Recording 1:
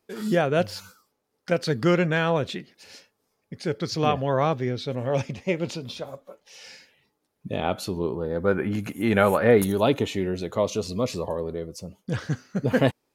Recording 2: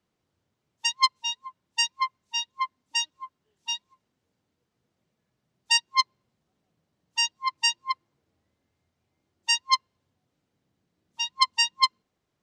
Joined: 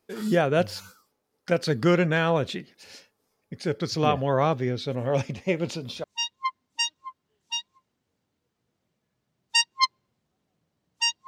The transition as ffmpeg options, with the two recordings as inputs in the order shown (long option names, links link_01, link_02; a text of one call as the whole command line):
ffmpeg -i cue0.wav -i cue1.wav -filter_complex "[0:a]apad=whole_dur=11.27,atrim=end=11.27,atrim=end=6.042[link_01];[1:a]atrim=start=2.198:end=7.43[link_02];[link_01][link_02]acrossfade=duration=0.004:curve1=hsin:curve2=hsin" out.wav